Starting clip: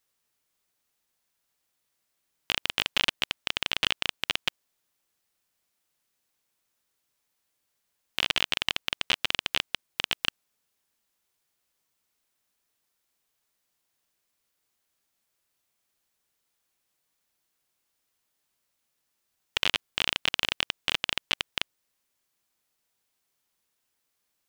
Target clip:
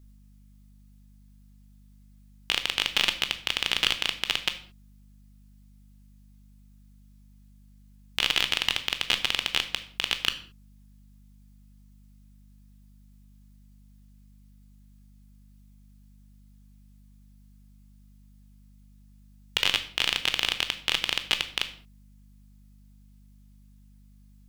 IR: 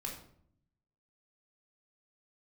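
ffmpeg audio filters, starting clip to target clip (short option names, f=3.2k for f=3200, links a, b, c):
-filter_complex "[0:a]aeval=exprs='val(0)+0.00251*(sin(2*PI*50*n/s)+sin(2*PI*2*50*n/s)/2+sin(2*PI*3*50*n/s)/3+sin(2*PI*4*50*n/s)/4+sin(2*PI*5*50*n/s)/5)':c=same,asplit=2[a][b];[1:a]atrim=start_sample=2205,afade=t=out:st=0.28:d=0.01,atrim=end_sample=12789,highshelf=f=2.1k:g=11.5[c];[b][c]afir=irnorm=-1:irlink=0,volume=-6.5dB[d];[a][d]amix=inputs=2:normalize=0,volume=-2.5dB"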